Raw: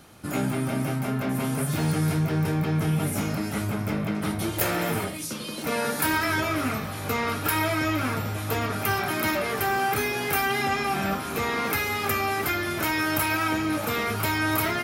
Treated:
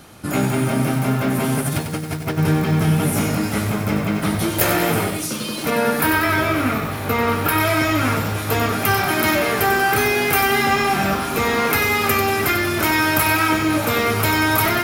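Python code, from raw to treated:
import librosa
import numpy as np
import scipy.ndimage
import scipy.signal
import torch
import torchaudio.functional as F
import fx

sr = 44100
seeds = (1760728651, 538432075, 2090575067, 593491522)

y = fx.over_compress(x, sr, threshold_db=-28.0, ratio=-0.5, at=(1.59, 2.37), fade=0.02)
y = fx.peak_eq(y, sr, hz=7000.0, db=-8.5, octaves=1.5, at=(5.7, 7.6))
y = fx.echo_crushed(y, sr, ms=94, feedback_pct=55, bits=7, wet_db=-7.0)
y = F.gain(torch.from_numpy(y), 7.0).numpy()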